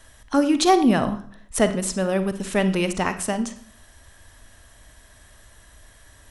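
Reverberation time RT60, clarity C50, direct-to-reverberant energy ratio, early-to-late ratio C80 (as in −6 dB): 0.50 s, 11.5 dB, 10.0 dB, 16.0 dB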